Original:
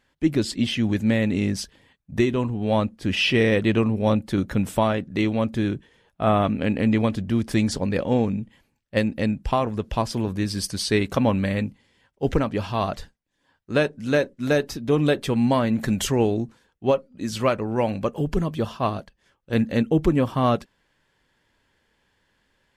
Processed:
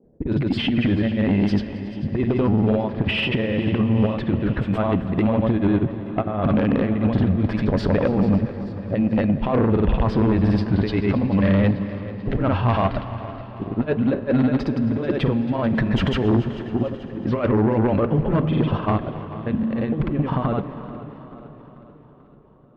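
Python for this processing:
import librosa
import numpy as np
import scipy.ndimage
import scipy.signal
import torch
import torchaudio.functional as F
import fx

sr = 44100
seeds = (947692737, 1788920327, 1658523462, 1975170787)

y = fx.env_lowpass(x, sr, base_hz=310.0, full_db=-20.0)
y = fx.high_shelf(y, sr, hz=8400.0, db=-8.0)
y = fx.over_compress(y, sr, threshold_db=-24.0, ratio=-0.5)
y = fx.granulator(y, sr, seeds[0], grain_ms=100.0, per_s=20.0, spray_ms=100.0, spread_st=0)
y = fx.dmg_noise_band(y, sr, seeds[1], low_hz=140.0, high_hz=520.0, level_db=-67.0)
y = fx.cheby_harmonics(y, sr, harmonics=(5,), levels_db=(-7,), full_scale_db=-10.5)
y = fx.air_absorb(y, sr, metres=410.0)
y = fx.echo_feedback(y, sr, ms=438, feedback_pct=54, wet_db=-16.0)
y = fx.rev_plate(y, sr, seeds[2], rt60_s=5.0, hf_ratio=0.8, predelay_ms=0, drr_db=13.0)
y = fx.echo_warbled(y, sr, ms=273, feedback_pct=61, rate_hz=2.8, cents=66, wet_db=-18.5)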